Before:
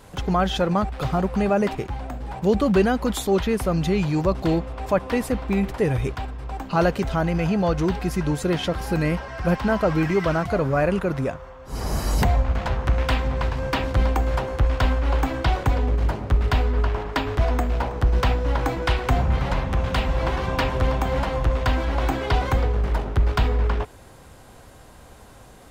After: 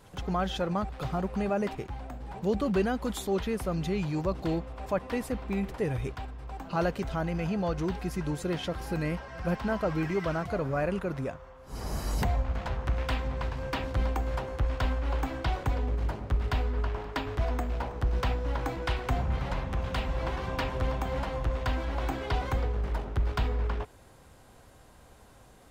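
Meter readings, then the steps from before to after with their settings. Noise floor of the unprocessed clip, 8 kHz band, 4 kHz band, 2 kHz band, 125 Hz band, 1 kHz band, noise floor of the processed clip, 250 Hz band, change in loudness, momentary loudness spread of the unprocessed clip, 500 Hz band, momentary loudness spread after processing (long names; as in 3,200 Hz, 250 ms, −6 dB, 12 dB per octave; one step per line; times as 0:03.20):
−46 dBFS, −8.5 dB, −8.5 dB, −8.5 dB, −8.5 dB, −8.5 dB, −55 dBFS, −8.5 dB, −8.5 dB, 5 LU, −8.5 dB, 5 LU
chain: echo ahead of the sound 119 ms −22.5 dB
level −8.5 dB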